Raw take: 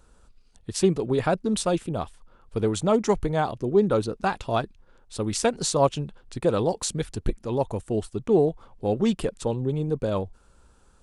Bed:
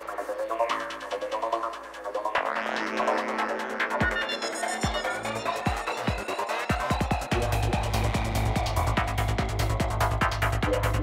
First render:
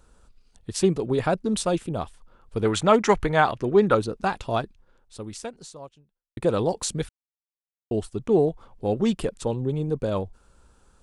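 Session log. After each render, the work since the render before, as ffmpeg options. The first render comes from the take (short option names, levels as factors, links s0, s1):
-filter_complex "[0:a]asettb=1/sr,asplit=3[s0][s1][s2];[s0]atrim=end=2.654[s3];[s1]atrim=start=2.65:end=3.95,asetpts=PTS-STARTPTS,afade=t=in:d=0.004:c=qsin,afade=t=out:st=1.296:d=0.004:c=qsin,equalizer=f=1800:t=o:w=2.2:g=11.5[s4];[s2]atrim=start=3.946[s5];[s3][s4]acrossfade=d=0.004:c1=hsin:c2=qsin[s6];[s6][s5]acrossfade=d=0.004:c1=qsin:c2=hsin,asplit=4[s7][s8][s9][s10];[s7]atrim=end=6.37,asetpts=PTS-STARTPTS,afade=t=out:st=4.51:d=1.86:c=qua[s11];[s8]atrim=start=6.37:end=7.09,asetpts=PTS-STARTPTS,afade=t=in:d=0.004:c=hsin,afade=t=out:st=0.716:d=0.004:c=hsin[s12];[s9]atrim=start=7.09:end=7.91,asetpts=PTS-STARTPTS,volume=0[s13];[s10]atrim=start=7.91,asetpts=PTS-STARTPTS,afade=t=in:d=0.004:c=hsin[s14];[s11][s12][s13][s14]concat=n=4:v=0:a=1"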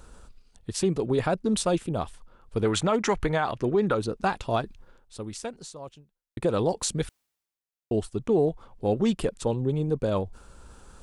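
-af "areverse,acompressor=mode=upward:threshold=0.0126:ratio=2.5,areverse,alimiter=limit=0.188:level=0:latency=1:release=115"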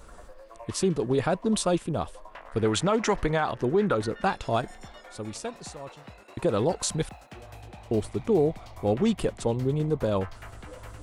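-filter_complex "[1:a]volume=0.112[s0];[0:a][s0]amix=inputs=2:normalize=0"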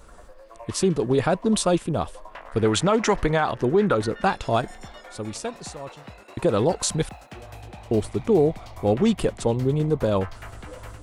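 -af "dynaudnorm=f=390:g=3:m=1.58"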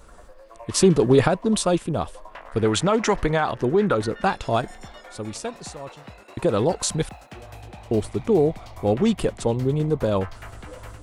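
-filter_complex "[0:a]asettb=1/sr,asplit=3[s0][s1][s2];[s0]atrim=end=0.744[s3];[s1]atrim=start=0.74:end=1.28,asetpts=PTS-STARTPTS,afade=t=in:d=0.004:c=qsin,afade=t=out:st=0.536:d=0.004:c=qsin,acontrast=46[s4];[s2]atrim=start=1.276[s5];[s3][s4]acrossfade=d=0.004:c1=hsin:c2=qsin[s6];[s6][s5]acrossfade=d=0.004:c1=qsin:c2=hsin"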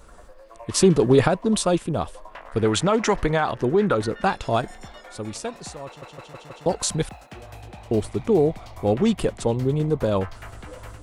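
-filter_complex "[0:a]asplit=6[s0][s1][s2][s3][s4][s5];[s0]atrim=end=6.022[s6];[s1]atrim=start=5.858:end=6.022[s7];[s2]atrim=start=5.858:end=6.022[s8];[s3]atrim=start=5.858:end=6.022[s9];[s4]atrim=start=5.858:end=6.022[s10];[s5]atrim=start=6.658[s11];[s6][s7]acrossfade=d=0.004:c1=hsin:c2=hsin[s12];[s12][s8]acrossfade=d=0.004:c1=hsin:c2=hsin[s13];[s13][s9]acrossfade=d=0.004:c1=hsin:c2=hsin[s14];[s14][s10]acrossfade=d=0.004:c1=hsin:c2=hsin[s15];[s15][s11]acrossfade=d=0.004:c1=hsin:c2=hsin"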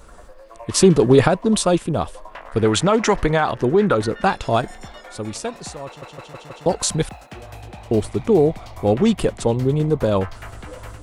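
-af "volume=1.5"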